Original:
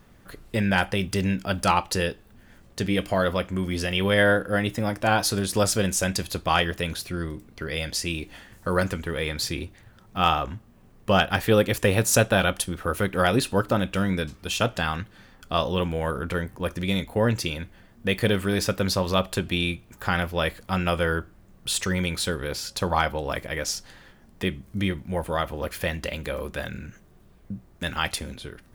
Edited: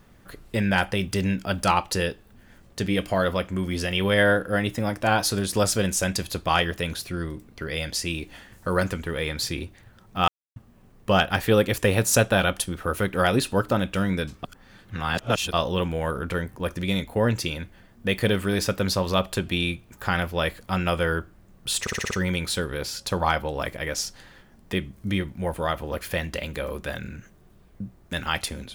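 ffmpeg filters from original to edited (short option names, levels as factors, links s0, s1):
-filter_complex "[0:a]asplit=10[s0][s1][s2][s3][s4][s5][s6][s7][s8][s9];[s0]atrim=end=10.28,asetpts=PTS-STARTPTS,afade=t=out:st=10.276:d=0.004:c=hsin[s10];[s1]atrim=start=10.28:end=10.56,asetpts=PTS-STARTPTS,volume=0[s11];[s2]atrim=start=10.56:end=14.432,asetpts=PTS-STARTPTS,afade=t=in:d=0.004:c=hsin[s12];[s3]atrim=start=14.428:end=15.532,asetpts=PTS-STARTPTS,areverse[s13];[s4]atrim=start=15.528:end=21.872[s14];[s5]atrim=start=21.808:end=21.872[s15];[s6]atrim=start=21.808:end=21.872[s16];[s7]atrim=start=21.808:end=21.872[s17];[s8]atrim=start=21.808:end=21.872[s18];[s9]atrim=start=21.808[s19];[s10][s11][s12]concat=n=3:v=0:a=1[s20];[s20][s13]acrossfade=d=0.004:c1=hsin:c2=hsin[s21];[s21][s14]acrossfade=d=0.004:c1=hsin:c2=hsin[s22];[s22][s15]acrossfade=d=0.004:c1=hsin:c2=hsin[s23];[s23][s16]acrossfade=d=0.004:c1=hsin:c2=hsin[s24];[s24][s17]acrossfade=d=0.004:c1=hsin:c2=hsin[s25];[s25][s18]acrossfade=d=0.004:c1=hsin:c2=hsin[s26];[s26][s19]acrossfade=d=0.004:c1=hsin:c2=hsin"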